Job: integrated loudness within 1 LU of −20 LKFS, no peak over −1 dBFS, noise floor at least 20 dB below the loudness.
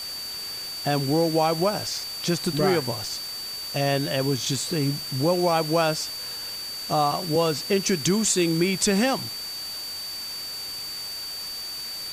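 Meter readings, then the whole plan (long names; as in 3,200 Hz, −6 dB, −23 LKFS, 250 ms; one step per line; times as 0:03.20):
interfering tone 4,600 Hz; level of the tone −32 dBFS; background noise floor −34 dBFS; target noise floor −45 dBFS; integrated loudness −25.0 LKFS; sample peak −9.5 dBFS; target loudness −20.0 LKFS
→ notch filter 4,600 Hz, Q 30
broadband denoise 11 dB, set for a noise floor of −34 dBFS
level +5 dB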